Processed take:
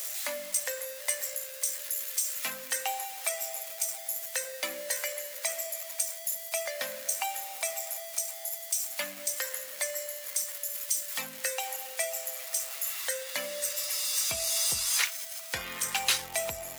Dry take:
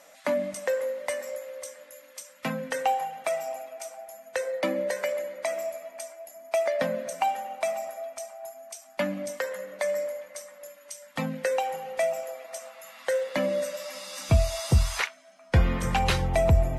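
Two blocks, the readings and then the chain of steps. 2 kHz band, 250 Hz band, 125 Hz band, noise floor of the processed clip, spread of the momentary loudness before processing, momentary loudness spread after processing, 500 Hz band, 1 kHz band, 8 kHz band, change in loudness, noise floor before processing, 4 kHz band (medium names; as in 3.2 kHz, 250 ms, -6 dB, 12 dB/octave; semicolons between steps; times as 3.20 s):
-1.5 dB, -20.0 dB, under -25 dB, -43 dBFS, 16 LU, 7 LU, -11.5 dB, -9.0 dB, +11.0 dB, -1.5 dB, -53 dBFS, +5.0 dB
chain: jump at every zero crossing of -37.5 dBFS; differentiator; trim +8.5 dB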